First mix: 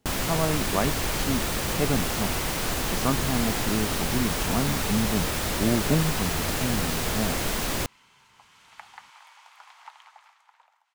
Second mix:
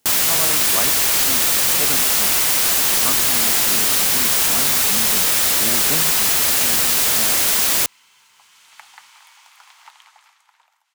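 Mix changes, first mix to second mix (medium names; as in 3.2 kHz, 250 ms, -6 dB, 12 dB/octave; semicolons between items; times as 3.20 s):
first sound +4.5 dB; master: add tilt EQ +3.5 dB/octave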